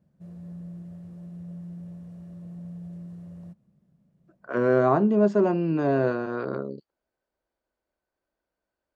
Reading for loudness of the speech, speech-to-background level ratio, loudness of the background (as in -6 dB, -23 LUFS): -23.5 LUFS, 18.0 dB, -41.5 LUFS